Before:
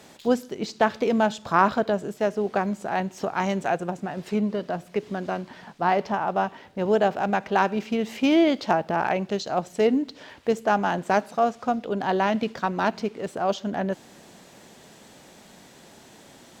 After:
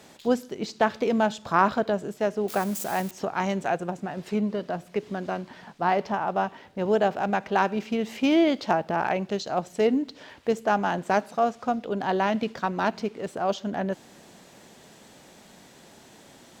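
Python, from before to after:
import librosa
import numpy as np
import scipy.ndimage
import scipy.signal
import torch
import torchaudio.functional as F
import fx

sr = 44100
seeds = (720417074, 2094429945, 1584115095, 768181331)

y = fx.crossing_spikes(x, sr, level_db=-24.5, at=(2.48, 3.11))
y = F.gain(torch.from_numpy(y), -1.5).numpy()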